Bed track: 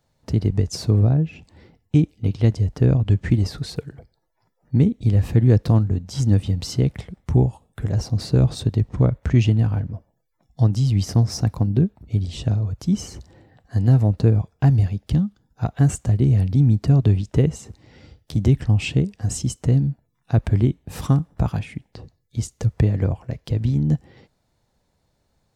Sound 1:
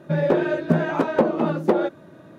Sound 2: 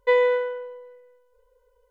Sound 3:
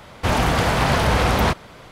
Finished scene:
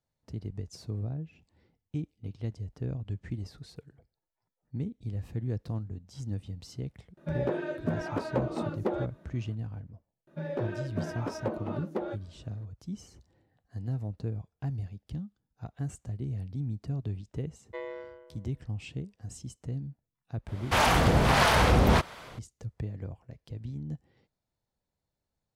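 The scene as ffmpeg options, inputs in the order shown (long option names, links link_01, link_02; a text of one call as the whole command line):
ffmpeg -i bed.wav -i cue0.wav -i cue1.wav -i cue2.wav -filter_complex "[1:a]asplit=2[link_01][link_02];[0:a]volume=-18dB[link_03];[2:a]tremolo=f=140:d=0.919[link_04];[3:a]acrossover=split=570[link_05][link_06];[link_05]aeval=exprs='val(0)*(1-0.7/2+0.7/2*cos(2*PI*1.5*n/s))':channel_layout=same[link_07];[link_06]aeval=exprs='val(0)*(1-0.7/2-0.7/2*cos(2*PI*1.5*n/s))':channel_layout=same[link_08];[link_07][link_08]amix=inputs=2:normalize=0[link_09];[link_01]atrim=end=2.38,asetpts=PTS-STARTPTS,volume=-11.5dB,afade=type=in:duration=0.004:curve=hsin,afade=type=out:start_time=2.376:duration=0.004:curve=hsin,adelay=7170[link_10];[link_02]atrim=end=2.38,asetpts=PTS-STARTPTS,volume=-14.5dB,afade=type=in:duration=0.004:curve=hsin,afade=type=out:start_time=2.376:duration=0.004:curve=hsin,adelay=10270[link_11];[link_04]atrim=end=1.9,asetpts=PTS-STARTPTS,volume=-16.5dB,afade=type=in:duration=0.004:curve=hsin,afade=type=out:start_time=1.896:duration=0.004:curve=hsin,adelay=17660[link_12];[link_09]atrim=end=1.91,asetpts=PTS-STARTPTS,volume=-0.5dB,afade=type=in:duration=0.004:curve=hsin,afade=type=out:start_time=1.906:duration=0.004:curve=hsin,adelay=20480[link_13];[link_03][link_10][link_11][link_12][link_13]amix=inputs=5:normalize=0" out.wav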